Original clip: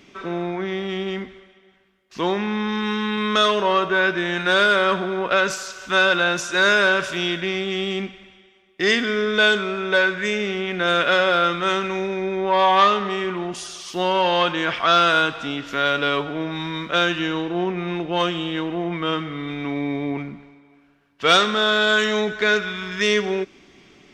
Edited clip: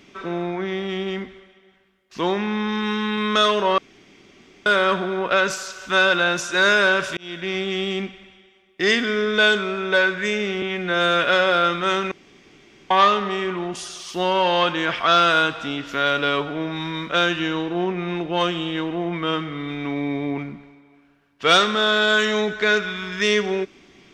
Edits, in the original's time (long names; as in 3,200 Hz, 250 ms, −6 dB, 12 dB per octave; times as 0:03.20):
0:03.78–0:04.66: fill with room tone
0:07.17–0:07.56: fade in
0:10.62–0:11.03: time-stretch 1.5×
0:11.91–0:12.70: fill with room tone